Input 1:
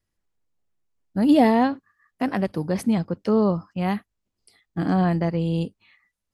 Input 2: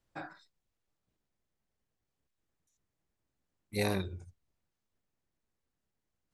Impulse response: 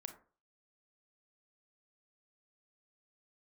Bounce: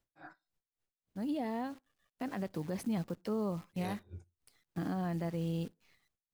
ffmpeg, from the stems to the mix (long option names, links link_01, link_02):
-filter_complex "[0:a]acrusher=bits=8:dc=4:mix=0:aa=0.000001,volume=-8.5dB,afade=type=in:start_time=1.64:duration=0.7:silence=0.354813,asplit=2[link_01][link_02];[link_02]volume=-22.5dB[link_03];[1:a]aeval=exprs='val(0)*pow(10,-28*(0.5-0.5*cos(2*PI*3.6*n/s))/20)':channel_layout=same,volume=-1.5dB,asplit=2[link_04][link_05];[link_05]volume=-17.5dB[link_06];[2:a]atrim=start_sample=2205[link_07];[link_03][link_06]amix=inputs=2:normalize=0[link_08];[link_08][link_07]afir=irnorm=-1:irlink=0[link_09];[link_01][link_04][link_09]amix=inputs=3:normalize=0,alimiter=level_in=4dB:limit=-24dB:level=0:latency=1:release=162,volume=-4dB"